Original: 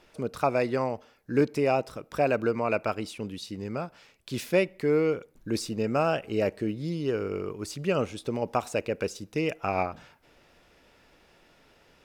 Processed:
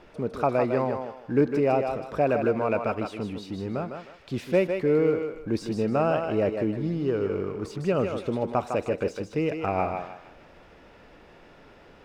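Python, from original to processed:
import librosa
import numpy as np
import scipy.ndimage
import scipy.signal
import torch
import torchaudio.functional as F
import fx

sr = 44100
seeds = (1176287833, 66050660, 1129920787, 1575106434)

y = fx.law_mismatch(x, sr, coded='mu')
y = fx.lowpass(y, sr, hz=1400.0, slope=6)
y = fx.echo_thinned(y, sr, ms=155, feedback_pct=31, hz=330.0, wet_db=-5.0)
y = y * librosa.db_to_amplitude(1.5)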